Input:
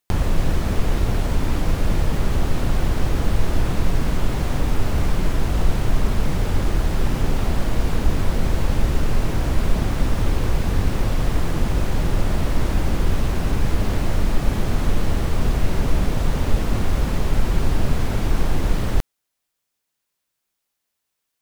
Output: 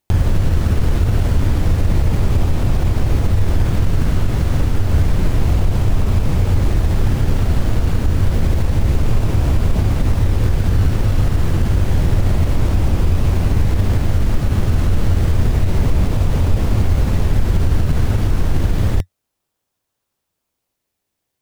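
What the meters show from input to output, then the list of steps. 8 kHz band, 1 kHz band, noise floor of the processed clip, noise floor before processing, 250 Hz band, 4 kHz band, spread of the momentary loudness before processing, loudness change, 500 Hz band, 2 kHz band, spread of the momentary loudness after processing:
+0.5 dB, 0.0 dB, −77 dBFS, −79 dBFS, +3.0 dB, +0.5 dB, 1 LU, +5.5 dB, +1.5 dB, 0.0 dB, 2 LU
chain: parametric band 91 Hz +10 dB 0.76 octaves
in parallel at −6 dB: sample-and-hold swept by an LFO 25×, swing 60% 0.29 Hz
on the sum: brickwall limiter −6 dBFS, peak gain reduction 7 dB

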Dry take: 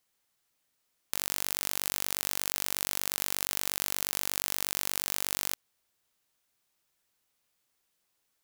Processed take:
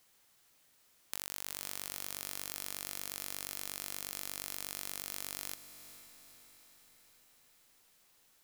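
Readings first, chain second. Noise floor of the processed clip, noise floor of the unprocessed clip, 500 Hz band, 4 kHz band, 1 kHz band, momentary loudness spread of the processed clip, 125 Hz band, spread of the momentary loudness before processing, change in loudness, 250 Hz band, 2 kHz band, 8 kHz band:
−68 dBFS, −78 dBFS, −9.0 dB, −9.5 dB, −10.0 dB, 15 LU, −8.5 dB, 2 LU, −9.5 dB, −8.0 dB, −9.5 dB, −9.0 dB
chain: downward compressor 5 to 1, threshold −45 dBFS, peak gain reduction 18.5 dB
on a send: feedback delay with all-pass diffusion 467 ms, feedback 56%, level −12.5 dB
on the sum: level +9 dB

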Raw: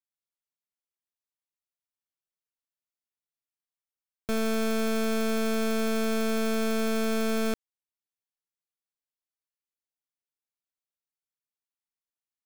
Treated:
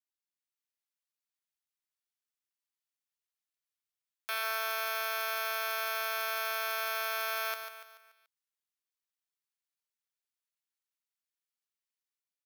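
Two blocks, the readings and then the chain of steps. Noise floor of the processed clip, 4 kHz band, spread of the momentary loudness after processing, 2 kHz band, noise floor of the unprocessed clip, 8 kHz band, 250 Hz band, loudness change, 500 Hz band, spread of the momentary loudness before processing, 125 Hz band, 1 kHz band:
below −85 dBFS, −0.5 dB, 6 LU, +2.0 dB, below −85 dBFS, −4.5 dB, below −40 dB, −4.5 dB, −11.5 dB, 4 LU, can't be measured, +1.0 dB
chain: gap after every zero crossing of 0.057 ms
Bessel high-pass filter 1,300 Hz, order 6
automatic gain control gain up to 4 dB
on a send: repeating echo 144 ms, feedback 45%, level −8 dB
on the sum: level +1.5 dB

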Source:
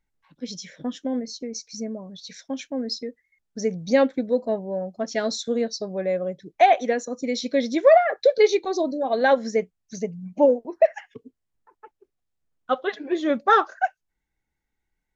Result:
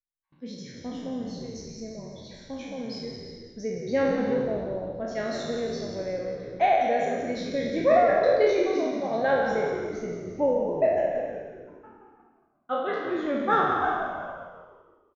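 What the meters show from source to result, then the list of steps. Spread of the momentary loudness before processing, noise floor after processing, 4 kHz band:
16 LU, −63 dBFS, −7.0 dB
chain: peak hold with a decay on every bin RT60 1.06 s
low-pass filter 2,300 Hz 6 dB per octave
noise gate with hold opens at −43 dBFS
echo with shifted repeats 175 ms, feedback 49%, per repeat −68 Hz, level −9 dB
reverb whose tail is shaped and stops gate 400 ms flat, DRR 6.5 dB
level −8 dB

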